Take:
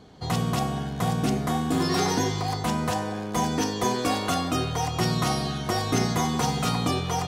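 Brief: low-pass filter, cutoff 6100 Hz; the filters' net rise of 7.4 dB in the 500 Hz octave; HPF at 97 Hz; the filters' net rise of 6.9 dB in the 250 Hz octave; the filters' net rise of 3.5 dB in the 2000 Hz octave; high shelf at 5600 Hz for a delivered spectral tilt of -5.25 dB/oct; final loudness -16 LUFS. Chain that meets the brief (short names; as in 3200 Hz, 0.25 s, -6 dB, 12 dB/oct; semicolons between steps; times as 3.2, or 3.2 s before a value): HPF 97 Hz; LPF 6100 Hz; bell 250 Hz +7 dB; bell 500 Hz +7 dB; bell 2000 Hz +3.5 dB; high shelf 5600 Hz +3 dB; gain +5.5 dB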